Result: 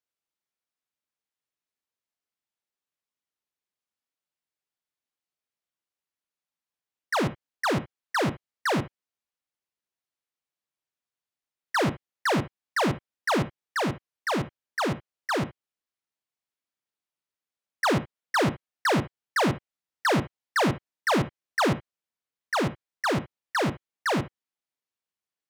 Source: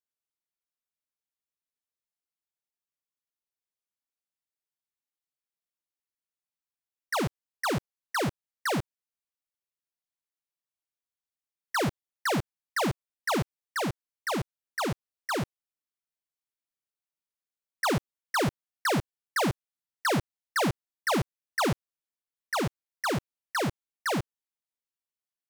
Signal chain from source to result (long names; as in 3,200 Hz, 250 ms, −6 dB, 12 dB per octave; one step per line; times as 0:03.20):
high-pass filter 85 Hz 6 dB per octave
high-shelf EQ 8,200 Hz −10.5 dB
on a send: convolution reverb, pre-delay 35 ms, DRR 11 dB
on the sum: level +3.5 dB